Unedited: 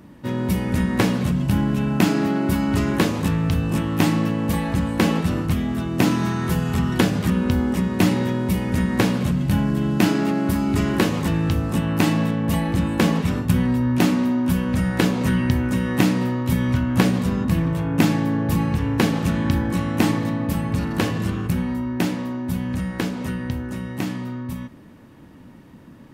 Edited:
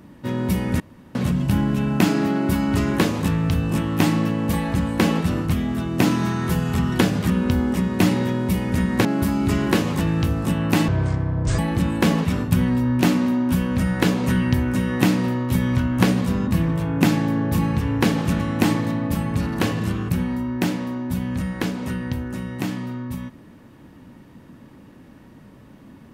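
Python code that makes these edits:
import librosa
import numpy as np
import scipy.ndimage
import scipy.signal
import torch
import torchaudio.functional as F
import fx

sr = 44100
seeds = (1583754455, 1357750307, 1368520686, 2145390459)

y = fx.edit(x, sr, fx.room_tone_fill(start_s=0.8, length_s=0.35),
    fx.cut(start_s=9.05, length_s=1.27),
    fx.speed_span(start_s=12.15, length_s=0.41, speed=0.58),
    fx.cut(start_s=19.37, length_s=0.41), tone=tone)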